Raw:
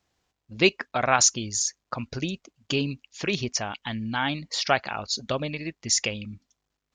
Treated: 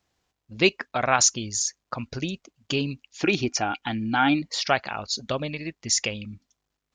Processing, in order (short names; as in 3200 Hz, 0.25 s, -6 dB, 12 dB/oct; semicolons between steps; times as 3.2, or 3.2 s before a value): 3.22–4.42 small resonant body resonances 310/770/1400/2400 Hz, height 13 dB